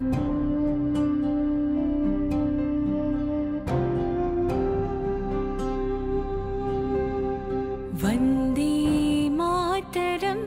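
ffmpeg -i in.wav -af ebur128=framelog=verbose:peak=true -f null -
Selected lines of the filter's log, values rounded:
Integrated loudness:
  I:         -25.8 LUFS
  Threshold: -35.8 LUFS
Loudness range:
  LRA:         2.9 LU
  Threshold: -46.2 LUFS
  LRA low:   -27.8 LUFS
  LRA high:  -24.9 LUFS
True peak:
  Peak:      -11.3 dBFS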